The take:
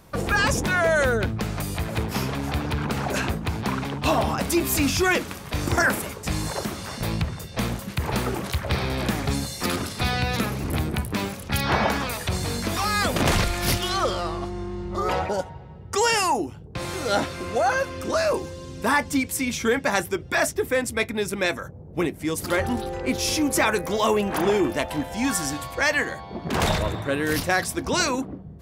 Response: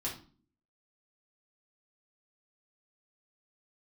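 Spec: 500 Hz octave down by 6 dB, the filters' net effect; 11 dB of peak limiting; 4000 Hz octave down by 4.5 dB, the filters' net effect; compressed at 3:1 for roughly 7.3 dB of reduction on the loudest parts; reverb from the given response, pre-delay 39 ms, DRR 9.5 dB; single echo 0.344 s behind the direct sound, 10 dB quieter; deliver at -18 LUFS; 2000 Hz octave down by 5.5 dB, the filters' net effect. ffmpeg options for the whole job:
-filter_complex "[0:a]equalizer=f=500:t=o:g=-7.5,equalizer=f=2k:t=o:g=-6,equalizer=f=4k:t=o:g=-4,acompressor=threshold=-30dB:ratio=3,alimiter=level_in=4dB:limit=-24dB:level=0:latency=1,volume=-4dB,aecho=1:1:344:0.316,asplit=2[a][b];[1:a]atrim=start_sample=2205,adelay=39[c];[b][c]afir=irnorm=-1:irlink=0,volume=-11.5dB[d];[a][d]amix=inputs=2:normalize=0,volume=18dB"

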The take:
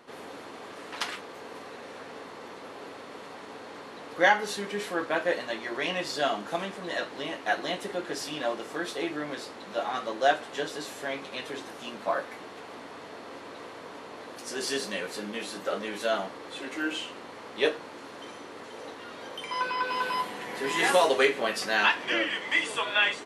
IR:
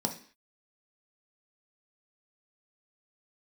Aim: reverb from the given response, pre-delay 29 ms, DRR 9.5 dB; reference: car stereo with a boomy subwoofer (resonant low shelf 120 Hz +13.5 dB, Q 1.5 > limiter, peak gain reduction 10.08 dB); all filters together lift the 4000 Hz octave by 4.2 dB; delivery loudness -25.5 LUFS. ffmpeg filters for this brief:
-filter_complex "[0:a]equalizer=f=4k:t=o:g=5.5,asplit=2[a][b];[1:a]atrim=start_sample=2205,adelay=29[c];[b][c]afir=irnorm=-1:irlink=0,volume=-14.5dB[d];[a][d]amix=inputs=2:normalize=0,lowshelf=f=120:t=q:w=1.5:g=13.5,volume=4.5dB,alimiter=limit=-11.5dB:level=0:latency=1"

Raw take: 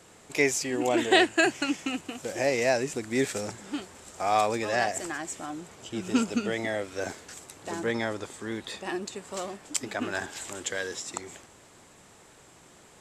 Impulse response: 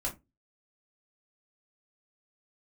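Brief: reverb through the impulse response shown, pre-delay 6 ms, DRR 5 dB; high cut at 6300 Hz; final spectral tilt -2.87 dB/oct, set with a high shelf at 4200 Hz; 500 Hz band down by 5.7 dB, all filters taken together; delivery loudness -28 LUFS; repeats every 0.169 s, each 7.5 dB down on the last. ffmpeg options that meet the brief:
-filter_complex "[0:a]lowpass=6.3k,equalizer=f=500:t=o:g=-8,highshelf=f=4.2k:g=5.5,aecho=1:1:169|338|507|676|845:0.422|0.177|0.0744|0.0312|0.0131,asplit=2[a][b];[1:a]atrim=start_sample=2205,adelay=6[c];[b][c]afir=irnorm=-1:irlink=0,volume=-8.5dB[d];[a][d]amix=inputs=2:normalize=0,volume=0.5dB"

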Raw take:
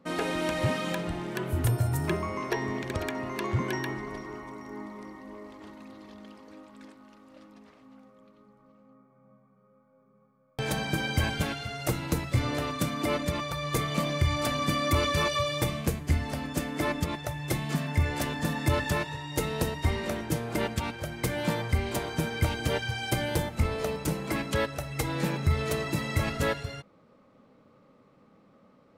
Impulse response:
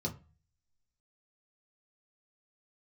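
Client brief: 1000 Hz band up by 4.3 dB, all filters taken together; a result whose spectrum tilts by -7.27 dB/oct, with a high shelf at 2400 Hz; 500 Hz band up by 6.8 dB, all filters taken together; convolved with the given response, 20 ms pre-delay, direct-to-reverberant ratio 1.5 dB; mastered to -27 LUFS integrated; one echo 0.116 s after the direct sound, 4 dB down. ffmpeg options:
-filter_complex "[0:a]equalizer=f=500:t=o:g=7.5,equalizer=f=1k:t=o:g=4,highshelf=f=2.4k:g=-4,aecho=1:1:116:0.631,asplit=2[a][b];[1:a]atrim=start_sample=2205,adelay=20[c];[b][c]afir=irnorm=-1:irlink=0,volume=-3.5dB[d];[a][d]amix=inputs=2:normalize=0,volume=-7.5dB"

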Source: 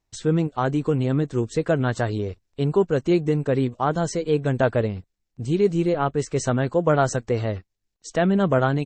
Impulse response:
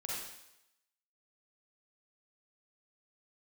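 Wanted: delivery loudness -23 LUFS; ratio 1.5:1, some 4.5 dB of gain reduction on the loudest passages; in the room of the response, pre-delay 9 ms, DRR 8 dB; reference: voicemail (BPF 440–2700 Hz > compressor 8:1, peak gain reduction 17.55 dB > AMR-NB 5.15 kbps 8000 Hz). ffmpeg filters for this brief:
-filter_complex "[0:a]acompressor=threshold=-27dB:ratio=1.5,asplit=2[a][b];[1:a]atrim=start_sample=2205,adelay=9[c];[b][c]afir=irnorm=-1:irlink=0,volume=-9.5dB[d];[a][d]amix=inputs=2:normalize=0,highpass=440,lowpass=2.7k,acompressor=threshold=-38dB:ratio=8,volume=21.5dB" -ar 8000 -c:a libopencore_amrnb -b:a 5150

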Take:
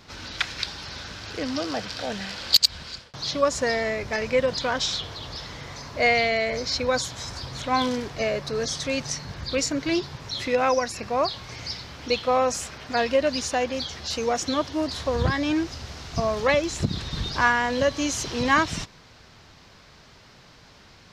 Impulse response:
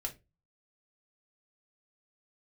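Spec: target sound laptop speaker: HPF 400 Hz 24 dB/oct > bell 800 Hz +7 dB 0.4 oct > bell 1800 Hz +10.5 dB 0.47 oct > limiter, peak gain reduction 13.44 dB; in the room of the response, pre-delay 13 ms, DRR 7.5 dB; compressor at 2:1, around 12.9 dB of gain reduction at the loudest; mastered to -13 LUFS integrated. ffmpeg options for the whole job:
-filter_complex "[0:a]acompressor=threshold=-36dB:ratio=2,asplit=2[a][b];[1:a]atrim=start_sample=2205,adelay=13[c];[b][c]afir=irnorm=-1:irlink=0,volume=-7.5dB[d];[a][d]amix=inputs=2:normalize=0,highpass=f=400:w=0.5412,highpass=f=400:w=1.3066,equalizer=f=800:t=o:w=0.4:g=7,equalizer=f=1.8k:t=o:w=0.47:g=10.5,volume=21.5dB,alimiter=limit=-4dB:level=0:latency=1"

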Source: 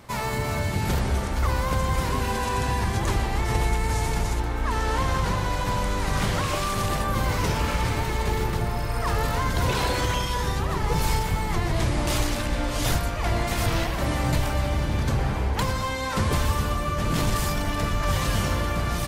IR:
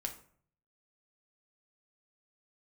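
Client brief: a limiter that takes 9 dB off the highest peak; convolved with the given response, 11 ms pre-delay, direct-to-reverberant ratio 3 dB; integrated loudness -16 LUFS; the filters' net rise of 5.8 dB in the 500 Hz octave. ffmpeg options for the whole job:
-filter_complex "[0:a]equalizer=f=500:t=o:g=7,alimiter=limit=-18dB:level=0:latency=1,asplit=2[a][b];[1:a]atrim=start_sample=2205,adelay=11[c];[b][c]afir=irnorm=-1:irlink=0,volume=-2.5dB[d];[a][d]amix=inputs=2:normalize=0,volume=10dB"

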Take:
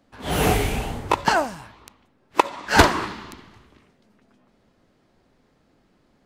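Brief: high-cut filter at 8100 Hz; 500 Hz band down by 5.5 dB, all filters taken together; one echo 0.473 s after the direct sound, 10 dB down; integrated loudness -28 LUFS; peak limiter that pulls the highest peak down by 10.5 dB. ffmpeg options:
-af "lowpass=8.1k,equalizer=f=500:t=o:g=-7.5,alimiter=limit=-12.5dB:level=0:latency=1,aecho=1:1:473:0.316,volume=-1dB"

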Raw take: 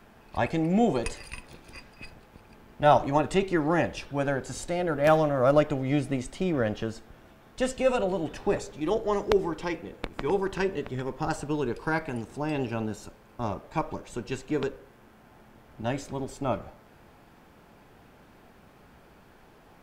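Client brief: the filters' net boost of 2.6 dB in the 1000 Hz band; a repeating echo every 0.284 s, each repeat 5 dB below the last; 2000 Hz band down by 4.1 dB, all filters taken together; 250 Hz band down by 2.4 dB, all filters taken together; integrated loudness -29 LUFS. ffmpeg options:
-af "equalizer=f=250:t=o:g=-3.5,equalizer=f=1k:t=o:g=5.5,equalizer=f=2k:t=o:g=-8,aecho=1:1:284|568|852|1136|1420|1704|1988:0.562|0.315|0.176|0.0988|0.0553|0.031|0.0173,volume=-2dB"

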